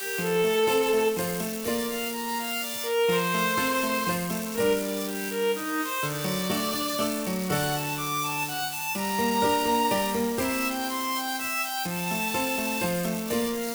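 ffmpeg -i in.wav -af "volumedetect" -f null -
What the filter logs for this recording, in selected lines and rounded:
mean_volume: -27.0 dB
max_volume: -11.7 dB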